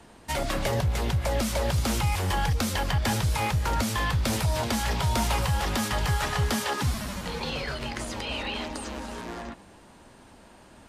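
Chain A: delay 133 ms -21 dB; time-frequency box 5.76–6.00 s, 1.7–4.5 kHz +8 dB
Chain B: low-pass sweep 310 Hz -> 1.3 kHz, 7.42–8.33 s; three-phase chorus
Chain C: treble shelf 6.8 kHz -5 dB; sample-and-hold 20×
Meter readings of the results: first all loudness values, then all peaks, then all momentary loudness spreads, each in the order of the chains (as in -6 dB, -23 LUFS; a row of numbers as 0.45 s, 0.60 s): -27.5 LUFS, -32.0 LUFS, -28.5 LUFS; -13.5 dBFS, -17.0 dBFS, -17.0 dBFS; 8 LU, 8 LU, 8 LU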